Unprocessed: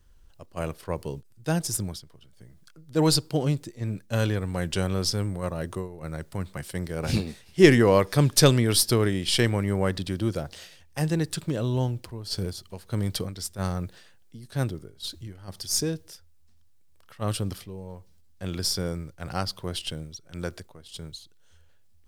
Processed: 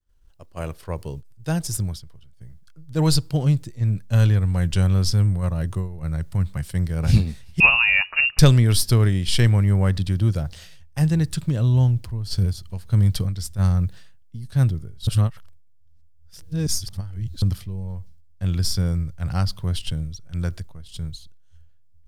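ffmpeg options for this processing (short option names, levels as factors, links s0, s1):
-filter_complex "[0:a]asettb=1/sr,asplit=3[s0][s1][s2];[s0]atrim=end=7.604[s3];[s1]atrim=start=7.6:end=8.39,asetpts=PTS-STARTPTS,afade=t=in:d=0.004:c=qsin,afade=t=out:st=0.786:d=0.004:c=qsin,lowpass=f=2500:t=q:w=0.5098,lowpass=f=2500:t=q:w=0.6013,lowpass=f=2500:t=q:w=0.9,lowpass=f=2500:t=q:w=2.563,afreqshift=-2900[s4];[s2]atrim=start=8.386[s5];[s3][s4]acrossfade=d=0.004:c1=hsin:c2=qsin[s6];[s6][s5]acrossfade=d=0.004:c1=qsin:c2=hsin,asplit=3[s7][s8][s9];[s7]atrim=end=15.072[s10];[s8]atrim=start=15.068:end=17.422,asetpts=PTS-STARTPTS,areverse[s11];[s9]atrim=start=17.418[s12];[s10][s11]acrossfade=d=0.004:c1=hsin:c2=hsin[s13];[s13][s12]acrossfade=d=0.004:c1=hsin:c2=hsin,deesser=0.3,agate=range=0.0224:threshold=0.00398:ratio=3:detection=peak,asubboost=boost=6.5:cutoff=140"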